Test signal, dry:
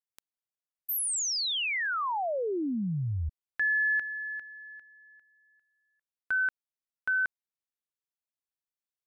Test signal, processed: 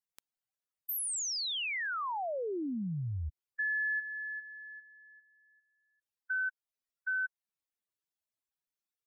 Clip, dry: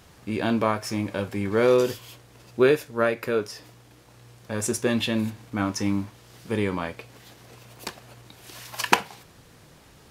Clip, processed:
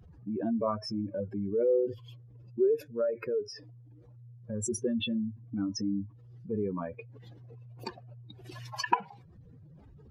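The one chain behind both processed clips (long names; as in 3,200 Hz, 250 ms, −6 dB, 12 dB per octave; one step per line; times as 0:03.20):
expanding power law on the bin magnitudes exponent 2.8
in parallel at +1.5 dB: downward compressor, threshold −39 dBFS
on the sum: level −7.5 dB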